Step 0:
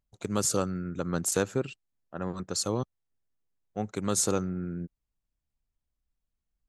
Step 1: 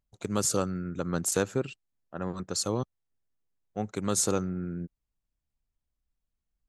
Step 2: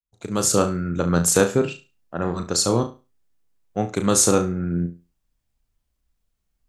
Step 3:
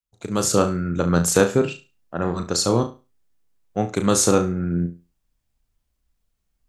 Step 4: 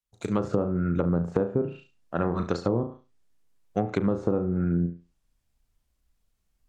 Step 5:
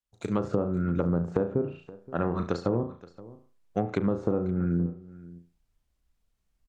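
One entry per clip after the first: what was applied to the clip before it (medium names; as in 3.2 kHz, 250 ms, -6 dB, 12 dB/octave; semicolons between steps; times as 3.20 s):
no audible change
fade-in on the opening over 0.60 s; flutter echo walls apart 6 m, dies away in 0.29 s; trim +9 dB
dynamic bell 9.4 kHz, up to -5 dB, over -32 dBFS, Q 0.91; trim +1 dB
low-pass that closes with the level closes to 720 Hz, closed at -16.5 dBFS; compression 10:1, threshold -20 dBFS, peak gain reduction 9.5 dB
treble shelf 6.7 kHz -5 dB; delay 523 ms -19.5 dB; trim -1.5 dB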